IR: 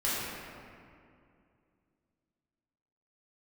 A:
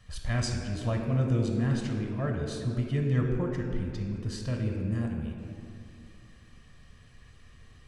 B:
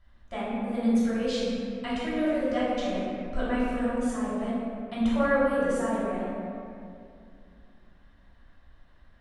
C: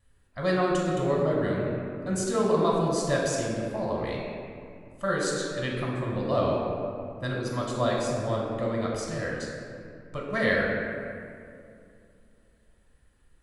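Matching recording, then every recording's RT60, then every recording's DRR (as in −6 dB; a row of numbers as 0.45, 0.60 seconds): B; 2.4, 2.4, 2.4 seconds; 1.0, −10.5, −3.5 decibels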